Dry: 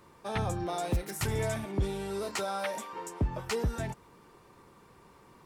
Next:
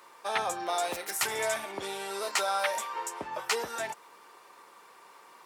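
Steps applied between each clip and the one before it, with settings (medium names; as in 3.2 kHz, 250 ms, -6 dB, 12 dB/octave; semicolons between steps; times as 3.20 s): high-pass 700 Hz 12 dB/octave; trim +7 dB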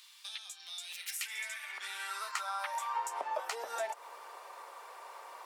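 compression 12:1, threshold -39 dBFS, peak gain reduction 16 dB; high-pass sweep 3.5 kHz -> 610 Hz, 0.71–3.38 s; trim +2 dB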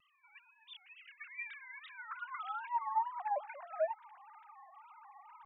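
formants replaced by sine waves; wow and flutter 140 cents; trim -1.5 dB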